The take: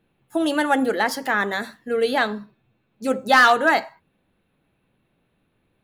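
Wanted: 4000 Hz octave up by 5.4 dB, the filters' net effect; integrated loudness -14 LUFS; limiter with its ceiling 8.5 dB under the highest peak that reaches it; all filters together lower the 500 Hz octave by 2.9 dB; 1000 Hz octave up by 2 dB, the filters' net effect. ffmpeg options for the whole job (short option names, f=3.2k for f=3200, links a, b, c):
-af "equalizer=f=500:t=o:g=-5,equalizer=f=1k:t=o:g=4,equalizer=f=4k:t=o:g=6.5,volume=9dB,alimiter=limit=-2.5dB:level=0:latency=1"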